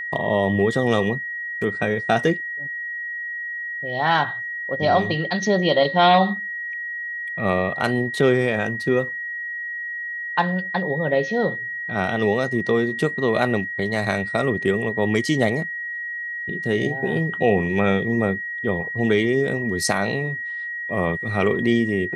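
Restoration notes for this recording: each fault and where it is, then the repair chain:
whistle 1,900 Hz −27 dBFS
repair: notch filter 1,900 Hz, Q 30

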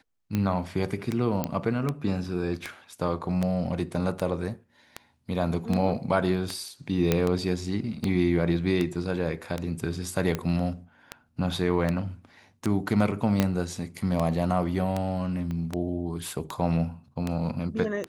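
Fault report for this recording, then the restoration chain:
scratch tick 78 rpm −14 dBFS
0:01.44: click −13 dBFS
0:07.12: click −8 dBFS
0:13.40: click −8 dBFS
0:15.51: click −23 dBFS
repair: click removal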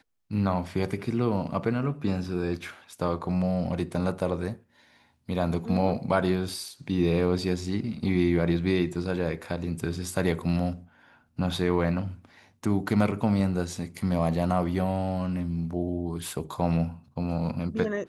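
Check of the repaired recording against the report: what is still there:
0:13.40: click
0:15.51: click

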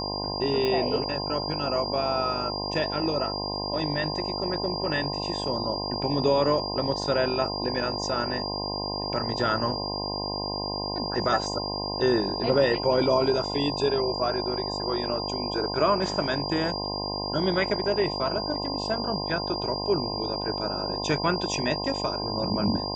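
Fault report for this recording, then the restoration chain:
mains buzz 50 Hz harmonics 21 −33 dBFS
whistle 4,800 Hz −32 dBFS
0:00.65: click −15 dBFS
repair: click removal
hum removal 50 Hz, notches 21
notch filter 4,800 Hz, Q 30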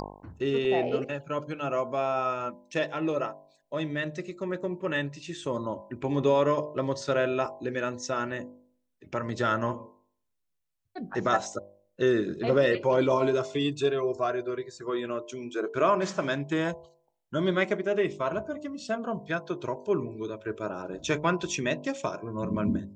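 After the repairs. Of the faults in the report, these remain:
none of them is left

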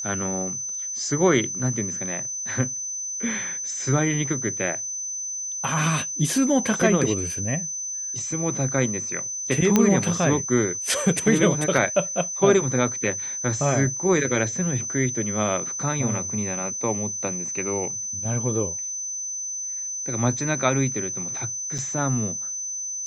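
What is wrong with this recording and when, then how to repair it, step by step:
whistle 6,100 Hz −28 dBFS
0:09.76: click −4 dBFS
0:21.78–0:21.79: drop-out 5.9 ms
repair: click removal
notch filter 6,100 Hz, Q 30
repair the gap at 0:21.78, 5.9 ms

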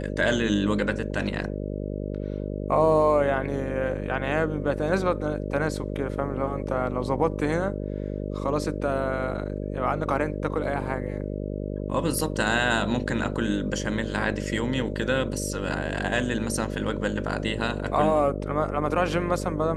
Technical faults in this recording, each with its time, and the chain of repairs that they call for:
mains buzz 50 Hz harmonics 12 −31 dBFS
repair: hum removal 50 Hz, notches 12

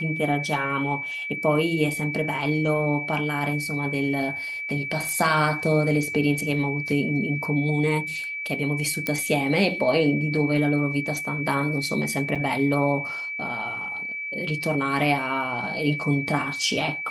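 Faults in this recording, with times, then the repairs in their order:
whistle 2,300 Hz −29 dBFS
0:05.09: click
0:09.07: click −10 dBFS
0:12.35–0:12.36: drop-out 6.2 ms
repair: click removal
notch filter 2,300 Hz, Q 30
repair the gap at 0:12.35, 6.2 ms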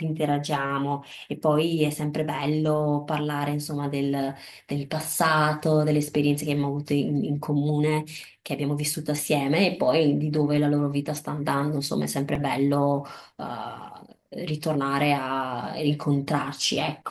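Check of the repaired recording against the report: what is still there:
none of them is left

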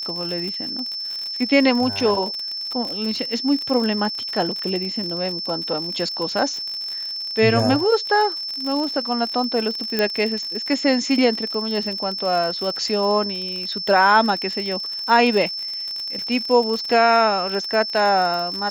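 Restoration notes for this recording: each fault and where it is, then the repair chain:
surface crackle 48 per second −25 dBFS
whistle 5,300 Hz −26 dBFS
0:09.99: click −6 dBFS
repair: click removal
notch filter 5,300 Hz, Q 30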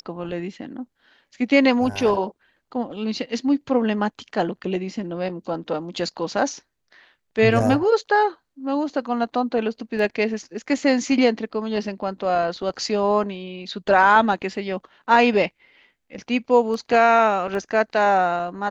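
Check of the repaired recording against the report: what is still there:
0:09.99: click

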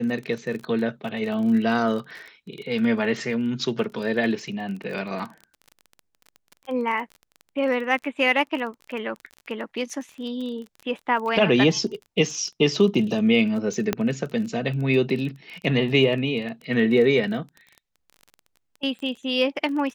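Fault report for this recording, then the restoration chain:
surface crackle 25 per second −32 dBFS
0:13.93: click −8 dBFS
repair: click removal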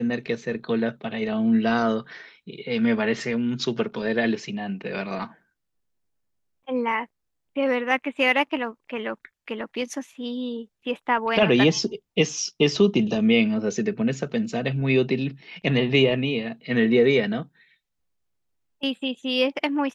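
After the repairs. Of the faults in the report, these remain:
none of them is left

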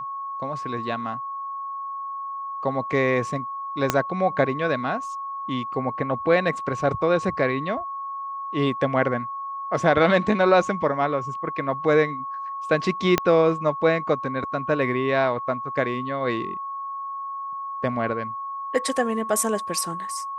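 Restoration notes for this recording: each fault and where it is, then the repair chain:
whistle 1,100 Hz −29 dBFS
0:03.90: click −4 dBFS
0:13.18: click −4 dBFS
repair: click removal
notch filter 1,100 Hz, Q 30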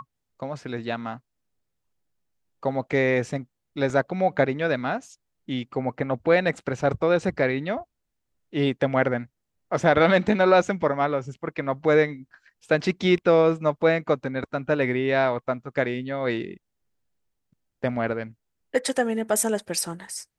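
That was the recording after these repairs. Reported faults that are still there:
0:03.90: click
0:13.18: click

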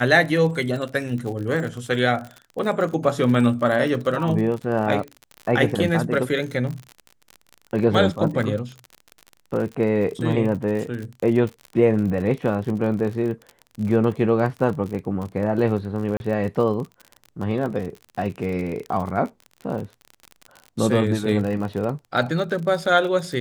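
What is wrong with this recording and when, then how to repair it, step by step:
surface crackle 46 per second −29 dBFS
0:16.17–0:16.20: drop-out 31 ms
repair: click removal
repair the gap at 0:16.17, 31 ms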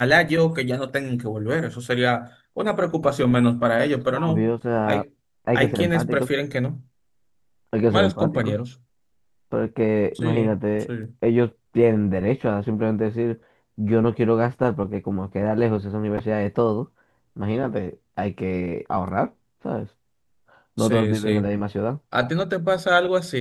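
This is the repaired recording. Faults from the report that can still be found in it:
none of them is left

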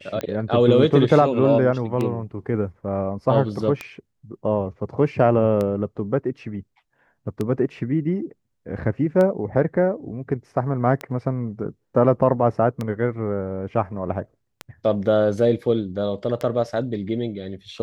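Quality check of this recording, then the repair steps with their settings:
scratch tick 33 1/3 rpm −13 dBFS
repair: click removal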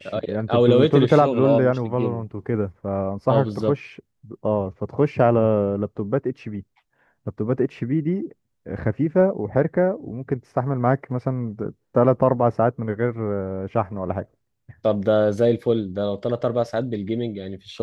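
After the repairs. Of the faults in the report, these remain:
none of them is left

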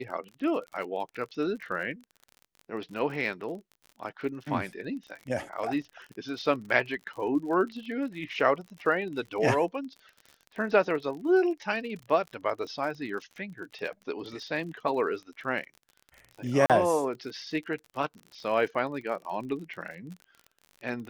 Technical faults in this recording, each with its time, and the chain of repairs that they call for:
surface crackle 43 per second −38 dBFS
0:16.66–0:16.70: drop-out 37 ms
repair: click removal
repair the gap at 0:16.66, 37 ms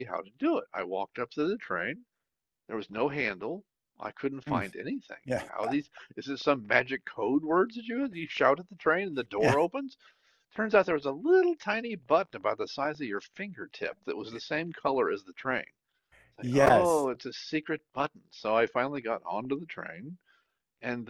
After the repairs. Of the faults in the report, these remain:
none of them is left

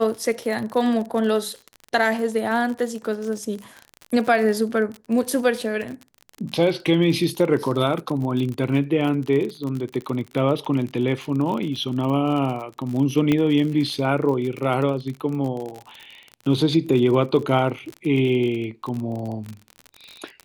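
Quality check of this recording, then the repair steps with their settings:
surface crackle 47 per second −28 dBFS
0:13.32: click −9 dBFS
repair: click removal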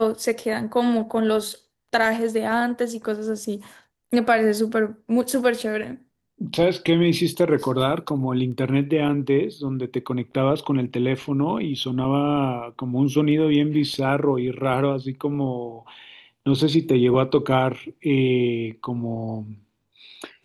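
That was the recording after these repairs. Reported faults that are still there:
0:13.32: click

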